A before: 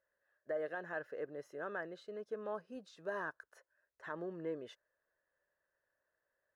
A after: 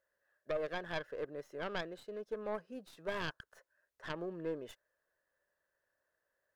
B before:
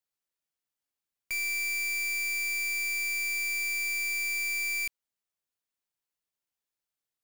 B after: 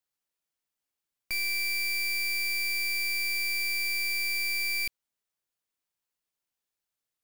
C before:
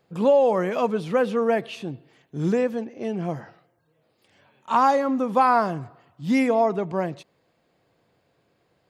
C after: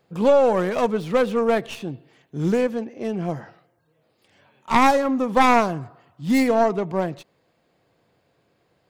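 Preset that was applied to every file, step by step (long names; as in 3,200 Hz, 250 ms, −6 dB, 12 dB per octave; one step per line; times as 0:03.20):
stylus tracing distortion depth 0.22 ms
level +1.5 dB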